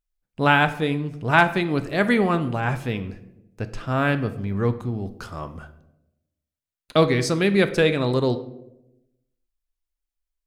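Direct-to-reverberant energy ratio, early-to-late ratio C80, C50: 10.0 dB, 16.5 dB, 14.0 dB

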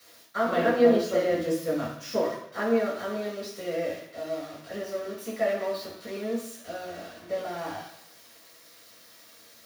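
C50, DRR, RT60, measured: 4.5 dB, −7.0 dB, 0.70 s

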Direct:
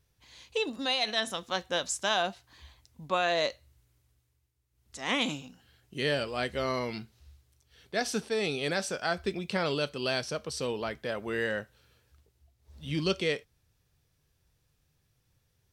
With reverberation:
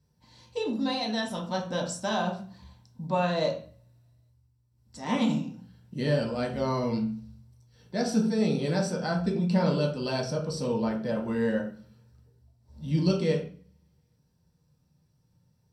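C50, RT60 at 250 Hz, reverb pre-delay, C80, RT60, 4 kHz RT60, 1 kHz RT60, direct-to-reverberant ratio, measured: 7.5 dB, 0.70 s, 3 ms, 12.0 dB, 0.40 s, 0.40 s, 0.45 s, −3.5 dB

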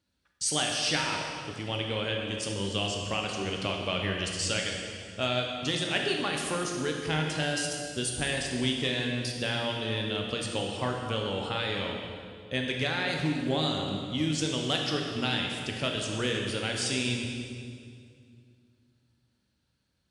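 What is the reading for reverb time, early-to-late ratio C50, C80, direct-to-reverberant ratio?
2.2 s, 2.5 dB, 3.5 dB, 0.5 dB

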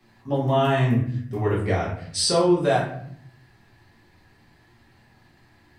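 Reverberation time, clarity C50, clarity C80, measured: 0.60 s, 5.0 dB, 8.5 dB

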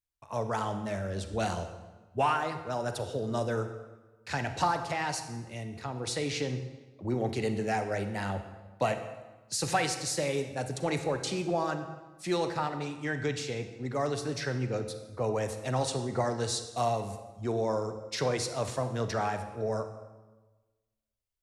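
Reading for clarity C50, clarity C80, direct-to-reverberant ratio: 9.0 dB, 11.0 dB, 8.0 dB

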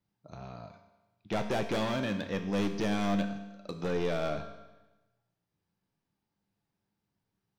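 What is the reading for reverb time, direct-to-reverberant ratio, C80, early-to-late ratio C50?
1.1 s, 5.5 dB, 10.5 dB, 9.0 dB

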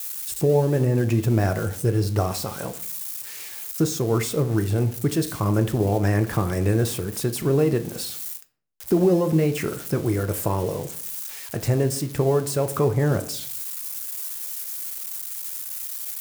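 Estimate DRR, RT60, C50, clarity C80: 8.0 dB, 0.55 s, 15.0 dB, 18.5 dB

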